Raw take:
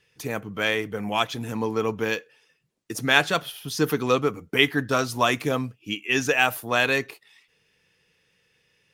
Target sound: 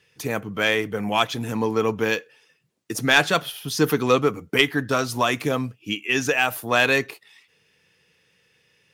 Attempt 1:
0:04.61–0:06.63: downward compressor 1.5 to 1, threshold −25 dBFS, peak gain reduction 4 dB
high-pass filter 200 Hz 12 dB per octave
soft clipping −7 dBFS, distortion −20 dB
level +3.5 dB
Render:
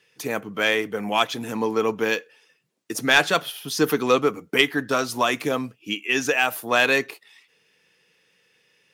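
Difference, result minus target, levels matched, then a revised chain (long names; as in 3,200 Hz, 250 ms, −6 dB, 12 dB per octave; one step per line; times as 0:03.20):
125 Hz band −7.0 dB
0:04.61–0:06.63: downward compressor 1.5 to 1, threshold −25 dBFS, peak gain reduction 4 dB
high-pass filter 66 Hz 12 dB per octave
soft clipping −7 dBFS, distortion −20 dB
level +3.5 dB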